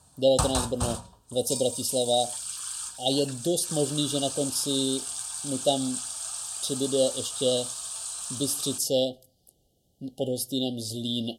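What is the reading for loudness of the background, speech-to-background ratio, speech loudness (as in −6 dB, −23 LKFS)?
−32.0 LKFS, 4.0 dB, −28.0 LKFS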